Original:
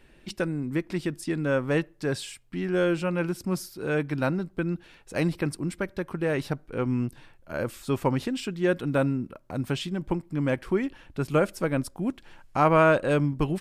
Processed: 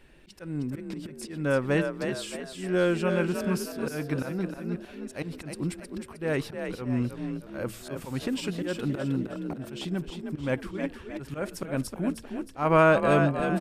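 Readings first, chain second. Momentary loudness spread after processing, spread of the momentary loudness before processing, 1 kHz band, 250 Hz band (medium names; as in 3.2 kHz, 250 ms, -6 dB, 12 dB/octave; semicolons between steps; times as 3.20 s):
13 LU, 9 LU, -1.5 dB, -1.5 dB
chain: slow attack 187 ms; de-hum 113 Hz, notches 4; frequency-shifting echo 312 ms, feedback 42%, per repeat +41 Hz, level -6.5 dB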